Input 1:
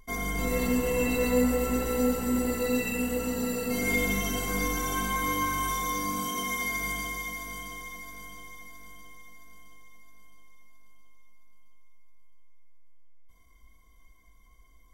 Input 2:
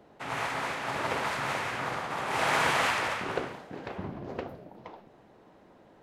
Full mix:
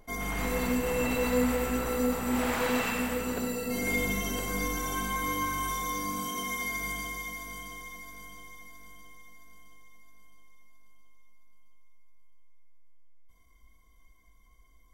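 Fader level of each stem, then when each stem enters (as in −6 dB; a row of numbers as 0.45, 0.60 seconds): −2.5, −7.0 decibels; 0.00, 0.00 seconds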